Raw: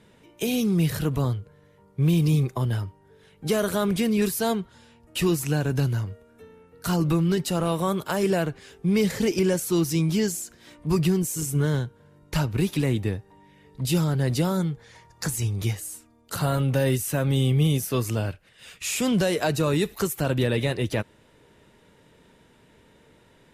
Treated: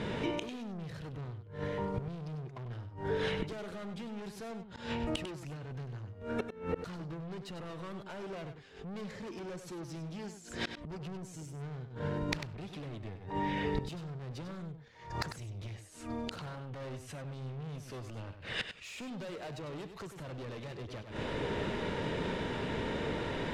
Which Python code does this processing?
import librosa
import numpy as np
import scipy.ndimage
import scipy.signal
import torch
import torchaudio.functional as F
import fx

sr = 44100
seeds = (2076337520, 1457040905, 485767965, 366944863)

p1 = scipy.signal.sosfilt(scipy.signal.butter(2, 4300.0, 'lowpass', fs=sr, output='sos'), x)
p2 = fx.peak_eq(p1, sr, hz=560.0, db=2.0, octaves=2.1)
p3 = fx.rider(p2, sr, range_db=10, speed_s=0.5)
p4 = p2 + F.gain(torch.from_numpy(p3), 2.0).numpy()
p5 = 10.0 ** (-21.5 / 20.0) * np.tanh(p4 / 10.0 ** (-21.5 / 20.0))
p6 = fx.gate_flip(p5, sr, shuts_db=-34.0, range_db=-31)
p7 = p6 + fx.echo_single(p6, sr, ms=98, db=-9.5, dry=0)
p8 = fx.pre_swell(p7, sr, db_per_s=110.0)
y = F.gain(torch.from_numpy(p8), 12.0).numpy()